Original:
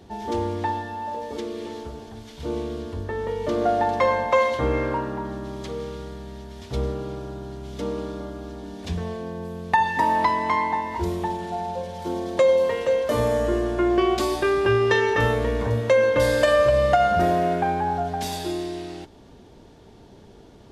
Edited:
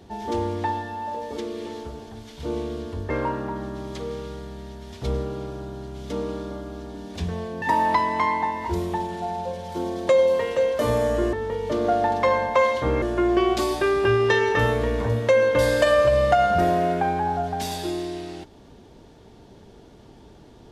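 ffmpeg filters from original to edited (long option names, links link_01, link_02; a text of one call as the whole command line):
ffmpeg -i in.wav -filter_complex "[0:a]asplit=5[link_01][link_02][link_03][link_04][link_05];[link_01]atrim=end=3.102[link_06];[link_02]atrim=start=4.788:end=9.312[link_07];[link_03]atrim=start=9.918:end=13.632[link_08];[link_04]atrim=start=3.098:end=4.792[link_09];[link_05]atrim=start=13.628[link_10];[link_06][link_07]acrossfade=duration=0.004:curve1=hsin:curve2=hsin[link_11];[link_11][link_08]acrossfade=duration=0.004:curve1=hsin:curve2=hsin[link_12];[link_12][link_09]acrossfade=duration=0.004:curve1=hsin:curve2=hsin[link_13];[link_13][link_10]acrossfade=duration=0.004:curve1=hsin:curve2=hsin" out.wav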